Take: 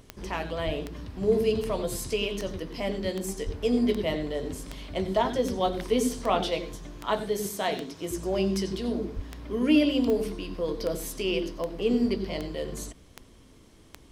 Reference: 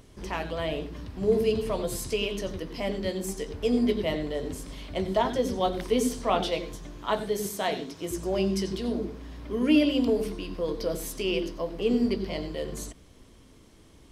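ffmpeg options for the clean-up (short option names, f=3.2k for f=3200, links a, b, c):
-filter_complex "[0:a]adeclick=t=4,asplit=3[a][b][c];[a]afade=t=out:st=0.65:d=0.02[d];[b]highpass=f=140:w=0.5412,highpass=f=140:w=1.3066,afade=t=in:st=0.65:d=0.02,afade=t=out:st=0.77:d=0.02[e];[c]afade=t=in:st=0.77:d=0.02[f];[d][e][f]amix=inputs=3:normalize=0,asplit=3[g][h][i];[g]afade=t=out:st=3.45:d=0.02[j];[h]highpass=f=140:w=0.5412,highpass=f=140:w=1.3066,afade=t=in:st=3.45:d=0.02,afade=t=out:st=3.57:d=0.02[k];[i]afade=t=in:st=3.57:d=0.02[l];[j][k][l]amix=inputs=3:normalize=0,asplit=3[m][n][o];[m]afade=t=out:st=9.15:d=0.02[p];[n]highpass=f=140:w=0.5412,highpass=f=140:w=1.3066,afade=t=in:st=9.15:d=0.02,afade=t=out:st=9.27:d=0.02[q];[o]afade=t=in:st=9.27:d=0.02[r];[p][q][r]amix=inputs=3:normalize=0"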